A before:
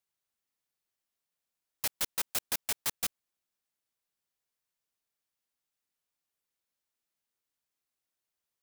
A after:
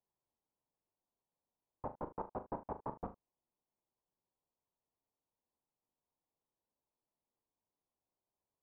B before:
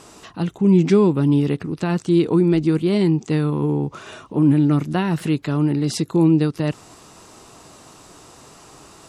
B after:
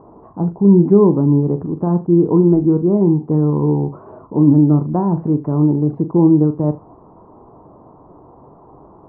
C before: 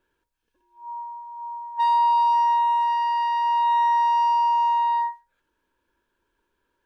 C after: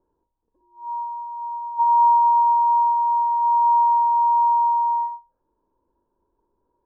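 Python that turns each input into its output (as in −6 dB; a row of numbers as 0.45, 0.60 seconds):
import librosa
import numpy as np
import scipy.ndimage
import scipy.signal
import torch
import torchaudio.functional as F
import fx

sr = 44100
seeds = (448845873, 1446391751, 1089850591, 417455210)

p1 = scipy.signal.sosfilt(scipy.signal.cheby1(4, 1.0, 1000.0, 'lowpass', fs=sr, output='sos'), x)
p2 = p1 + fx.room_early_taps(p1, sr, ms=(40, 76), db=(-10.5, -18.0), dry=0)
y = p2 * librosa.db_to_amplitude(4.0)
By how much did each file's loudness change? −13.0, +4.0, +3.0 LU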